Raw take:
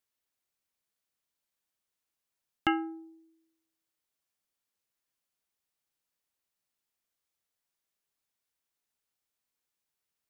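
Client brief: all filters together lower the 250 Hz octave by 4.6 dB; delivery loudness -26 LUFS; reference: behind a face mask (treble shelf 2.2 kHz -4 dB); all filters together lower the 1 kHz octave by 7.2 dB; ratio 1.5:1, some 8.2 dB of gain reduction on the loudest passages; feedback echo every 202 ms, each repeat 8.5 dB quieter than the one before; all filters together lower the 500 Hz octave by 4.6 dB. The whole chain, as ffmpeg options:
-af "equalizer=f=250:t=o:g=-3.5,equalizer=f=500:t=o:g=-4.5,equalizer=f=1000:t=o:g=-7.5,acompressor=threshold=0.00316:ratio=1.5,highshelf=f=2200:g=-4,aecho=1:1:202|404|606|808:0.376|0.143|0.0543|0.0206,volume=11.2"

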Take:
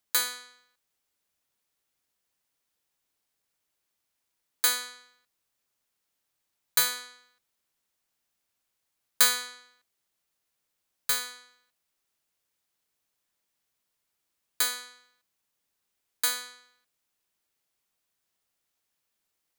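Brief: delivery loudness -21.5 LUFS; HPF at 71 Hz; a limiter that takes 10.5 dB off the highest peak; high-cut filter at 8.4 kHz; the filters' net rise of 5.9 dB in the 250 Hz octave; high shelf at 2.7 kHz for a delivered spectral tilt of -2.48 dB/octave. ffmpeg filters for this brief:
-af "highpass=71,lowpass=8400,equalizer=f=250:t=o:g=6,highshelf=f=2700:g=-4,volume=5.96,alimiter=limit=0.501:level=0:latency=1"

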